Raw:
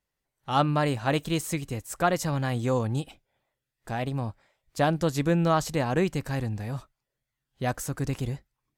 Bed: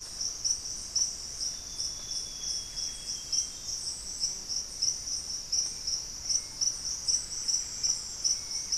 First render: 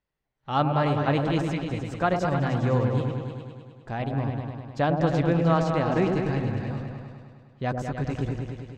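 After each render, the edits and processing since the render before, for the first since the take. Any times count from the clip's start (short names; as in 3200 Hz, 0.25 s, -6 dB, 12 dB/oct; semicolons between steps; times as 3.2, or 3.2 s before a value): air absorption 160 m; repeats that get brighter 0.102 s, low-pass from 750 Hz, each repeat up 2 oct, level -3 dB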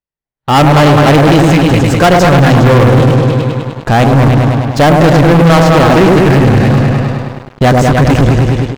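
AGC gain up to 9.5 dB; sample leveller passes 5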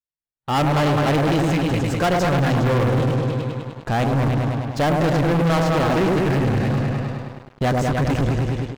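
gain -12.5 dB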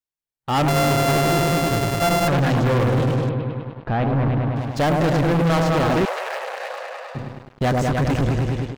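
0.68–2.28 sample sorter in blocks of 64 samples; 3.29–4.56 air absorption 340 m; 6.05–7.15 elliptic high-pass 530 Hz, stop band 50 dB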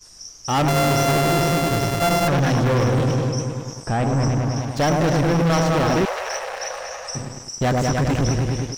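add bed -5 dB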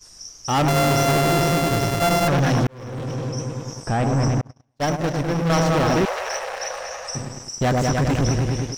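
2.67–3.74 fade in; 4.41–5.5 gate -19 dBFS, range -43 dB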